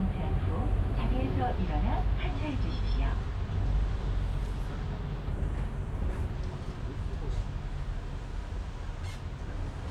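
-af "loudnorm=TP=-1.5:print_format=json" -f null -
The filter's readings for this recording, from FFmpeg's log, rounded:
"input_i" : "-34.8",
"input_tp" : "-18.0",
"input_lra" : "6.9",
"input_thresh" : "-44.8",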